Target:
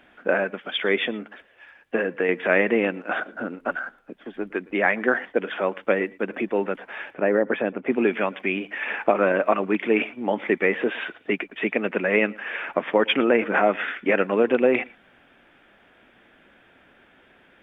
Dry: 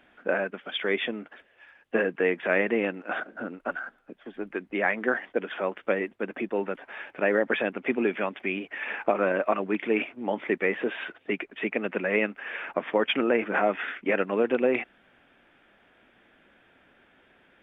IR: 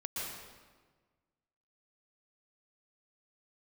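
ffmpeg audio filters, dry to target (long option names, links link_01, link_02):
-filter_complex "[0:a]asettb=1/sr,asplit=3[link_01][link_02][link_03];[link_01]atrim=end=1.034[link_04];[link_02]atrim=start=1.03:end=2.29,asetpts=PTS-STARTPTS,afade=type=in:duration=0.004:curve=qsin,afade=type=out:start_time=1.256:duration=0.004:curve=qsin,acompressor=threshold=-27dB:ratio=2[link_05];[link_03]atrim=start=2.286[link_06];[link_04][link_05]acrossfade=duration=0.004:curve1=hsin:curve2=qsin[link_07];[link_07][link_06]acrossfade=duration=0.004:curve1=qsin:curve2=hsin,asettb=1/sr,asplit=3[link_08][link_09][link_10];[link_08]atrim=end=7.144[link_11];[link_09]atrim=start=7.14:end=7.92,asetpts=PTS-STARTPTS,afade=type=in:duration=0.004:curve=qsin,afade=type=out:start_time=0.776:duration=0.004:curve=qsin,lowpass=frequency=1000:poles=1[link_12];[link_10]atrim=start=7.916[link_13];[link_11][link_12]acrossfade=duration=0.004:curve1=hsin:curve2=qsin[link_14];[link_14][link_13]acrossfade=duration=0.004:curve1=qsin:curve2=hsin,asplit=2[link_15][link_16];[1:a]atrim=start_sample=2205,afade=type=out:start_time=0.16:duration=0.01,atrim=end_sample=7497[link_17];[link_16][link_17]afir=irnorm=-1:irlink=0,volume=-5dB[link_18];[link_15][link_18]amix=inputs=2:normalize=0,volume=2dB"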